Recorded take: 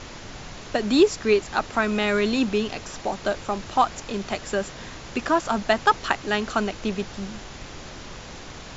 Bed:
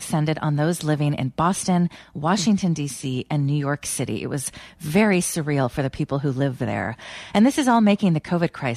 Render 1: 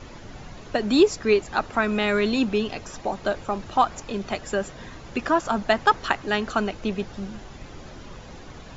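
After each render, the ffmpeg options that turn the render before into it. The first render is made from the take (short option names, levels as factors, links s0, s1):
-af "afftdn=nr=9:nf=-40"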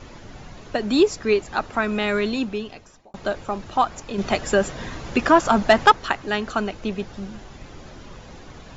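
-filter_complex "[0:a]asettb=1/sr,asplit=3[s0][s1][s2];[s0]atrim=end=4.184[s3];[s1]atrim=start=4.18:end=5.92,asetpts=PTS-STARTPTS,afade=t=in:d=0.004:c=qsin,afade=t=out:st=1.736:d=0.004:c=qsin,acontrast=85[s4];[s2]atrim=start=5.916[s5];[s3][s4]acrossfade=d=0.004:c1=hsin:c2=qsin[s6];[s6][s5]acrossfade=d=0.004:c1=qsin:c2=hsin,asplit=2[s7][s8];[s7]atrim=end=3.14,asetpts=PTS-STARTPTS,afade=t=out:st=2.17:d=0.97[s9];[s8]atrim=start=3.14,asetpts=PTS-STARTPTS,afade=t=in:d=0.004:c=hsin[s10];[s9][s10]concat=n=2:v=0:a=1"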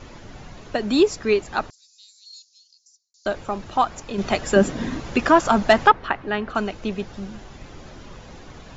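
-filter_complex "[0:a]asettb=1/sr,asplit=3[s0][s1][s2];[s0]atrim=end=1.704[s3];[s1]atrim=start=1.7:end=3.26,asetpts=PTS-STARTPTS,afade=t=in:d=0.004:c=qsin,afade=t=out:st=1.556:d=0.004:c=qsin,asuperpass=centerf=5700:order=8:qfactor=1.9[s4];[s2]atrim=start=3.256[s5];[s3][s4]acrossfade=d=0.004:c1=hsin:c2=qsin[s6];[s6][s5]acrossfade=d=0.004:c1=qsin:c2=hsin,asettb=1/sr,asplit=3[s7][s8][s9];[s7]atrim=end=4.564[s10];[s8]atrim=start=4.56:end=5,asetpts=PTS-STARTPTS,afade=t=in:d=0.004:c=qsin,afade=t=out:st=0.436:d=0.004:c=qsin,equalizer=f=250:w=1.5:g=13.5[s11];[s9]atrim=start=4.996[s12];[s10][s11]acrossfade=d=0.004:c1=hsin:c2=qsin[s13];[s13][s12]acrossfade=d=0.004:c1=qsin:c2=hsin,asettb=1/sr,asplit=3[s14][s15][s16];[s14]atrim=end=5.874[s17];[s15]atrim=start=5.87:end=6.55,asetpts=PTS-STARTPTS,afade=t=in:d=0.004:c=qsin,afade=t=out:st=0.676:d=0.004:c=qsin,lowpass=2500[s18];[s16]atrim=start=6.546[s19];[s17][s18]acrossfade=d=0.004:c1=hsin:c2=qsin[s20];[s20][s19]acrossfade=d=0.004:c1=qsin:c2=hsin"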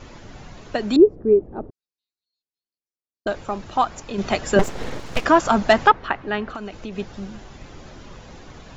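-filter_complex "[0:a]asettb=1/sr,asplit=3[s0][s1][s2];[s0]atrim=end=0.964[s3];[s1]atrim=start=0.96:end=3.27,asetpts=PTS-STARTPTS,afade=t=in:d=0.004:c=qsin,afade=t=out:st=2.306:d=0.004:c=qsin,lowpass=f=400:t=q:w=1.7[s4];[s2]atrim=start=3.266[s5];[s3][s4]acrossfade=d=0.004:c1=hsin:c2=qsin[s6];[s6][s5]acrossfade=d=0.004:c1=qsin:c2=hsin,asettb=1/sr,asplit=3[s7][s8][s9];[s7]atrim=end=4.594[s10];[s8]atrim=start=4.59:end=5.25,asetpts=PTS-STARTPTS,afade=t=in:d=0.004:c=qsin,afade=t=out:st=0.656:d=0.004:c=qsin,aeval=exprs='abs(val(0))':c=same[s11];[s9]atrim=start=5.246[s12];[s10][s11]acrossfade=d=0.004:c1=hsin:c2=qsin[s13];[s13][s12]acrossfade=d=0.004:c1=qsin:c2=hsin,asettb=1/sr,asplit=3[s14][s15][s16];[s14]atrim=end=6.534[s17];[s15]atrim=start=6.53:end=6.96,asetpts=PTS-STARTPTS,afade=t=in:d=0.004:c=qsin,afade=t=out:st=0.426:d=0.004:c=qsin,acompressor=threshold=0.0398:ratio=6:attack=3.2:release=140:knee=1:detection=peak[s18];[s16]atrim=start=6.956[s19];[s17][s18]acrossfade=d=0.004:c1=hsin:c2=qsin[s20];[s20][s19]acrossfade=d=0.004:c1=qsin:c2=hsin"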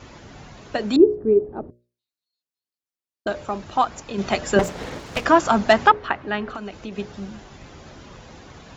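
-af "highpass=46,bandreject=f=60:t=h:w=6,bandreject=f=120:t=h:w=6,bandreject=f=180:t=h:w=6,bandreject=f=240:t=h:w=6,bandreject=f=300:t=h:w=6,bandreject=f=360:t=h:w=6,bandreject=f=420:t=h:w=6,bandreject=f=480:t=h:w=6,bandreject=f=540:t=h:w=6,bandreject=f=600:t=h:w=6"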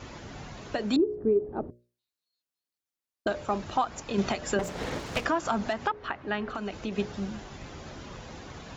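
-af "acompressor=threshold=0.141:ratio=6,alimiter=limit=0.158:level=0:latency=1:release=413"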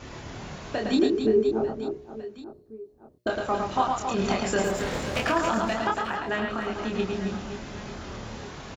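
-filter_complex "[0:a]asplit=2[s0][s1];[s1]adelay=27,volume=0.708[s2];[s0][s2]amix=inputs=2:normalize=0,aecho=1:1:110|275|522.5|893.8|1451:0.631|0.398|0.251|0.158|0.1"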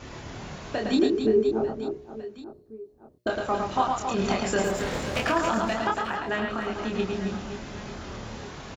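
-af anull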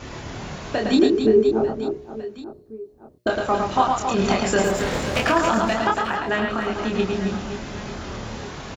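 -af "volume=1.88"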